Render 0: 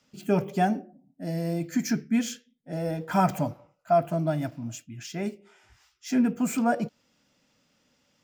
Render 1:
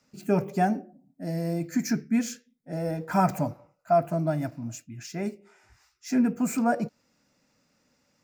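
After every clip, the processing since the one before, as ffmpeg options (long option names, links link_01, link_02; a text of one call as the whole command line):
ffmpeg -i in.wav -af "equalizer=frequency=3200:width_type=o:width=0.32:gain=-12" out.wav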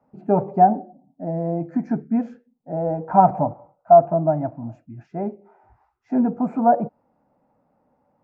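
ffmpeg -i in.wav -af "lowpass=frequency=820:width_type=q:width=3.4,volume=2.5dB" out.wav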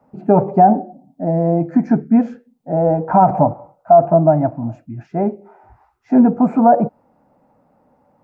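ffmpeg -i in.wav -af "alimiter=level_in=9.5dB:limit=-1dB:release=50:level=0:latency=1,volume=-1dB" out.wav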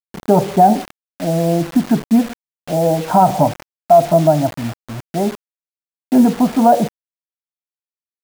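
ffmpeg -i in.wav -af "acrusher=bits=4:mix=0:aa=0.000001" out.wav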